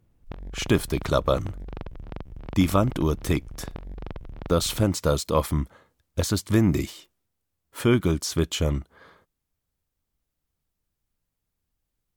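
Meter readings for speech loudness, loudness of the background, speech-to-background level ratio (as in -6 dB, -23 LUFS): -25.0 LUFS, -41.0 LUFS, 16.0 dB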